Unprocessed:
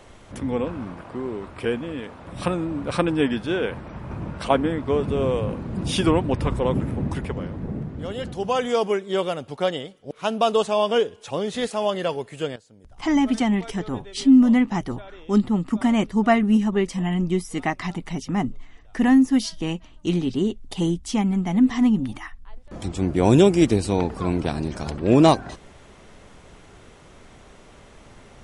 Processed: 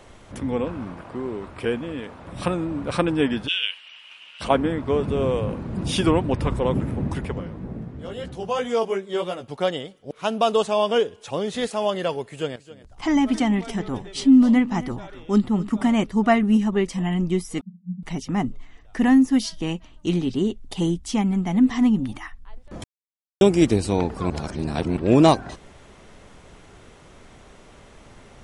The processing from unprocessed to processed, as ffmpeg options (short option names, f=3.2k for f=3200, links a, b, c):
-filter_complex "[0:a]asplit=3[a][b][c];[a]afade=t=out:st=3.47:d=0.02[d];[b]highpass=f=2.9k:t=q:w=11,afade=t=in:st=3.47:d=0.02,afade=t=out:st=4.4:d=0.02[e];[c]afade=t=in:st=4.4:d=0.02[f];[d][e][f]amix=inputs=3:normalize=0,asplit=3[g][h][i];[g]afade=t=out:st=7.4:d=0.02[j];[h]flanger=delay=15.5:depth=2.5:speed=3,afade=t=in:st=7.4:d=0.02,afade=t=out:st=9.48:d=0.02[k];[i]afade=t=in:st=9.48:d=0.02[l];[j][k][l]amix=inputs=3:normalize=0,asettb=1/sr,asplit=3[m][n][o];[m]atrim=end=12.124[p];[n]atrim=start=12.12:end=16.03,asetpts=PTS-STARTPTS,afade=t=in:d=0.004:c=qsin,afade=t=out:st=3.906:d=0.004:c=qsin,aecho=1:1:268:0.141,atrim=end_sample=172431[q];[o]atrim=start=16.026[r];[p][q]acrossfade=d=0.004:c1=hsin:c2=qsin[s];[s][r]acrossfade=d=0.004:c1=qsin:c2=hsin,asettb=1/sr,asplit=3[t][u][v];[t]atrim=end=17.614[w];[u]atrim=start=17.61:end=18.03,asetpts=PTS-STARTPTS,afade=t=in:d=0.004:c=qsin,afade=t=out:st=0.416:d=0.004:c=qsin,asuperpass=centerf=190:order=8:qfactor=5[x];[v]atrim=start=18.026[y];[w][x]acrossfade=d=0.004:c1=hsin:c2=qsin[z];[z][y]acrossfade=d=0.004:c1=qsin:c2=hsin,asplit=5[aa][ab][ac][ad][ae];[aa]atrim=end=22.84,asetpts=PTS-STARTPTS,afade=t=out:st=22.836:d=0.004:c=hsin[af];[ab]atrim=start=22.84:end=23.41,asetpts=PTS-STARTPTS,volume=0[ag];[ac]atrim=start=23.41:end=24.302,asetpts=PTS-STARTPTS,afade=t=in:d=0.004:c=hsin[ah];[ad]atrim=start=24.298:end=24.972,asetpts=PTS-STARTPTS,areverse[ai];[ae]atrim=start=24.968[aj];[af][ag][ah]concat=n=3:v=0:a=1[ak];[ak][ai]acrossfade=d=0.004:c1=hsin:c2=hsin[al];[al][aj]acrossfade=d=0.004:c1=hsin:c2=hsin"